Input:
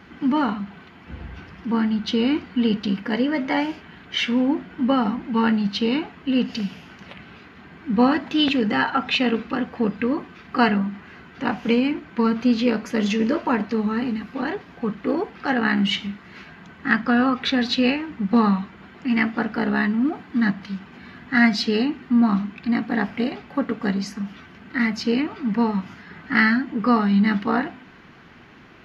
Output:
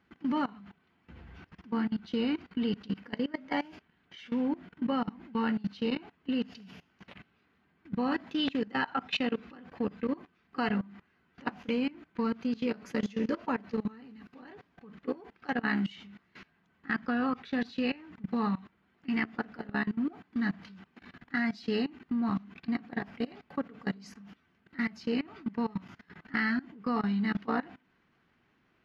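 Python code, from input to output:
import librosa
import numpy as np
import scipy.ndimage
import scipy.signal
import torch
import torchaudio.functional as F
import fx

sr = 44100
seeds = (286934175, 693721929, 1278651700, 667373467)

y = fx.level_steps(x, sr, step_db=21)
y = y * 10.0 ** (-7.5 / 20.0)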